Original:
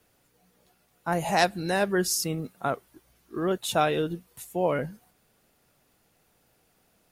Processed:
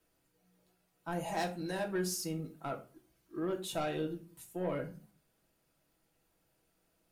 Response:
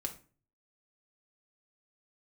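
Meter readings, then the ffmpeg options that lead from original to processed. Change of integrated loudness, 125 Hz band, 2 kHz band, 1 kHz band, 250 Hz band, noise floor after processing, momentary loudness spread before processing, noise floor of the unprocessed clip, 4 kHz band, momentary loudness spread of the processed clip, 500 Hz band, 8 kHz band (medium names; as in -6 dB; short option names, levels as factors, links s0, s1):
-10.0 dB, -8.5 dB, -13.0 dB, -12.5 dB, -7.5 dB, -77 dBFS, 12 LU, -68 dBFS, -11.5 dB, 11 LU, -10.0 dB, -11.0 dB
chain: -filter_complex "[0:a]asoftclip=type=tanh:threshold=0.112[s0];[1:a]atrim=start_sample=2205,asetrate=48510,aresample=44100[s1];[s0][s1]afir=irnorm=-1:irlink=0,volume=0.376"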